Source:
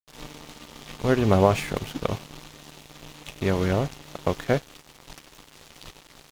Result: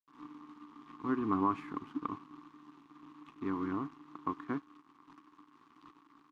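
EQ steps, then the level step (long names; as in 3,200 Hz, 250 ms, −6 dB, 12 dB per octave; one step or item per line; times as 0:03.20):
pair of resonant band-passes 570 Hz, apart 1.9 octaves
0.0 dB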